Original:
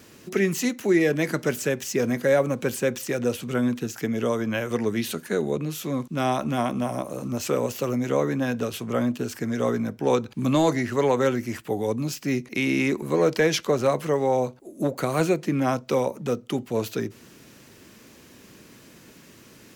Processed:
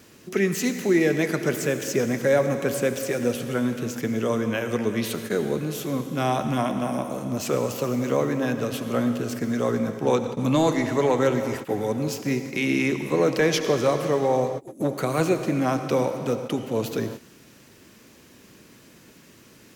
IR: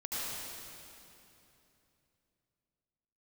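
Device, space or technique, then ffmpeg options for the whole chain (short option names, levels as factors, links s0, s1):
keyed gated reverb: -filter_complex "[0:a]asplit=3[s0][s1][s2];[1:a]atrim=start_sample=2205[s3];[s1][s3]afir=irnorm=-1:irlink=0[s4];[s2]apad=whole_len=871163[s5];[s4][s5]sidechaingate=range=0.0224:threshold=0.0126:ratio=16:detection=peak,volume=0.316[s6];[s0][s6]amix=inputs=2:normalize=0,volume=0.841"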